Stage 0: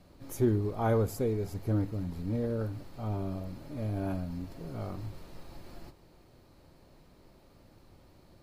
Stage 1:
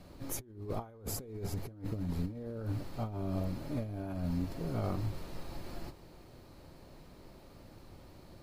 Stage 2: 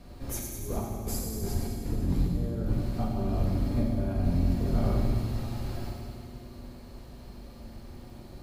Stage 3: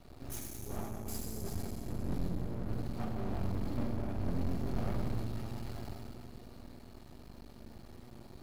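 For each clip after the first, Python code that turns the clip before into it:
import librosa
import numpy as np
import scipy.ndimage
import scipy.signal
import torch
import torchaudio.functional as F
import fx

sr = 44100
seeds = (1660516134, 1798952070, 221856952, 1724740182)

y1 = fx.over_compress(x, sr, threshold_db=-36.0, ratio=-0.5)
y2 = fx.octave_divider(y1, sr, octaves=2, level_db=3.0)
y2 = fx.echo_wet_highpass(y2, sr, ms=100, feedback_pct=69, hz=2900.0, wet_db=-6.5)
y2 = fx.rev_fdn(y2, sr, rt60_s=2.0, lf_ratio=1.45, hf_ratio=0.9, size_ms=25.0, drr_db=-1.0)
y2 = y2 * librosa.db_to_amplitude(1.0)
y3 = fx.notch_comb(y2, sr, f0_hz=520.0)
y3 = fx.tube_stage(y3, sr, drive_db=24.0, bias=0.8)
y3 = np.maximum(y3, 0.0)
y3 = y3 * librosa.db_to_amplitude(4.5)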